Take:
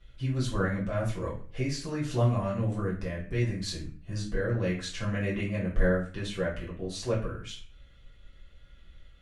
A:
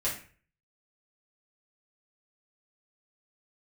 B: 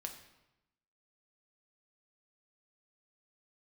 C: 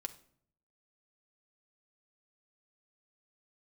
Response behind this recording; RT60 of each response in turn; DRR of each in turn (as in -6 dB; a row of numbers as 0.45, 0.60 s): A; 0.40, 0.95, 0.60 s; -8.0, 3.5, 6.0 dB